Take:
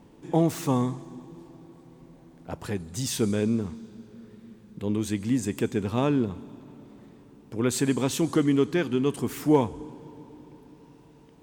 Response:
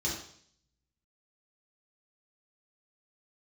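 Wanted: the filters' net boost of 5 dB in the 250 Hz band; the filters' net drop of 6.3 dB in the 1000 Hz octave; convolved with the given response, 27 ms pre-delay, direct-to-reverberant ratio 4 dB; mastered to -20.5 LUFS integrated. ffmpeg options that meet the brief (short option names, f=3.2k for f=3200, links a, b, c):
-filter_complex "[0:a]equalizer=f=250:t=o:g=6.5,equalizer=f=1k:t=o:g=-8.5,asplit=2[a][b];[1:a]atrim=start_sample=2205,adelay=27[c];[b][c]afir=irnorm=-1:irlink=0,volume=-9.5dB[d];[a][d]amix=inputs=2:normalize=0,volume=-1.5dB"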